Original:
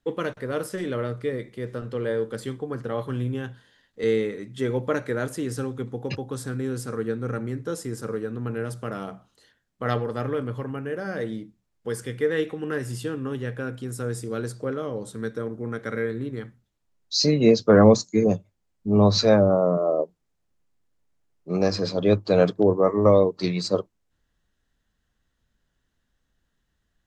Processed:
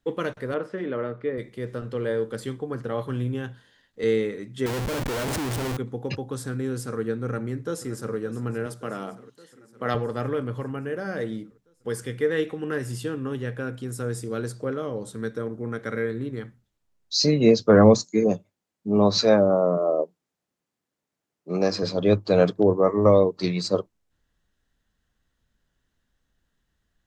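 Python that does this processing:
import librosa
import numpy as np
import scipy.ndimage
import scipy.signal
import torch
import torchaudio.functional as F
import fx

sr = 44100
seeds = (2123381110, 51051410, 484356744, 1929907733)

y = fx.bandpass_edges(x, sr, low_hz=180.0, high_hz=2200.0, at=(0.54, 1.38))
y = fx.schmitt(y, sr, flips_db=-39.0, at=(4.66, 5.77))
y = fx.echo_throw(y, sr, start_s=7.24, length_s=0.91, ms=570, feedback_pct=70, wet_db=-15.5)
y = fx.highpass(y, sr, hz=160.0, slope=12, at=(8.66, 9.95))
y = fx.highpass(y, sr, hz=170.0, slope=12, at=(18.05, 21.83))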